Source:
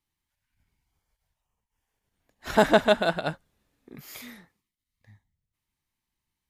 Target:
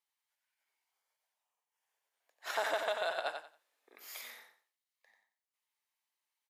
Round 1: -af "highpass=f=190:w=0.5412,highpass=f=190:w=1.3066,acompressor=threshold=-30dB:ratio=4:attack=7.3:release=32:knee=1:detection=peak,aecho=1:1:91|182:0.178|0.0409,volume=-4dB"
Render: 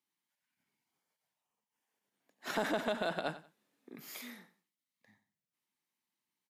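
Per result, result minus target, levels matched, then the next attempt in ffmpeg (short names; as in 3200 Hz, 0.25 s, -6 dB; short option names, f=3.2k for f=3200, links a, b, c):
250 Hz band +19.0 dB; echo-to-direct -8.5 dB
-af "highpass=f=530:w=0.5412,highpass=f=530:w=1.3066,acompressor=threshold=-30dB:ratio=4:attack=7.3:release=32:knee=1:detection=peak,aecho=1:1:91|182:0.178|0.0409,volume=-4dB"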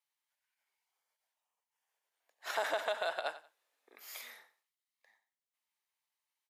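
echo-to-direct -8.5 dB
-af "highpass=f=530:w=0.5412,highpass=f=530:w=1.3066,acompressor=threshold=-30dB:ratio=4:attack=7.3:release=32:knee=1:detection=peak,aecho=1:1:91|182|273:0.473|0.109|0.025,volume=-4dB"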